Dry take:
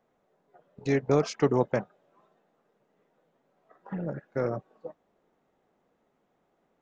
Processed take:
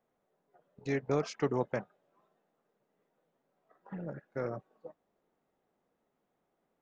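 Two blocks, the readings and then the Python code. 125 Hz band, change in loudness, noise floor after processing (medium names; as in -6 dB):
-7.5 dB, -7.0 dB, -81 dBFS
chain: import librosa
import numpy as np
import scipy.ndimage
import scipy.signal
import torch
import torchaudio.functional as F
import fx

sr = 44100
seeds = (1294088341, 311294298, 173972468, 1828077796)

y = fx.dynamic_eq(x, sr, hz=1900.0, q=0.76, threshold_db=-45.0, ratio=4.0, max_db=3)
y = F.gain(torch.from_numpy(y), -7.5).numpy()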